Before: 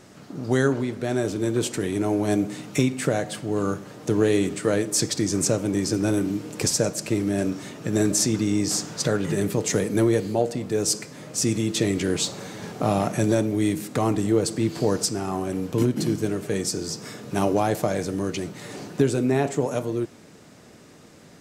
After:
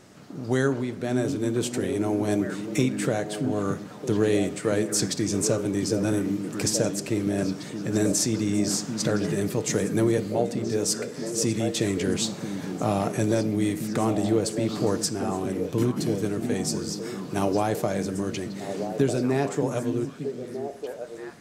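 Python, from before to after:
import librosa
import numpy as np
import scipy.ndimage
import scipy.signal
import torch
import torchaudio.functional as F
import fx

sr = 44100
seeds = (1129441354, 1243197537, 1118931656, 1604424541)

y = fx.echo_stepped(x, sr, ms=624, hz=200.0, octaves=1.4, feedback_pct=70, wet_db=-2.5)
y = F.gain(torch.from_numpy(y), -2.5).numpy()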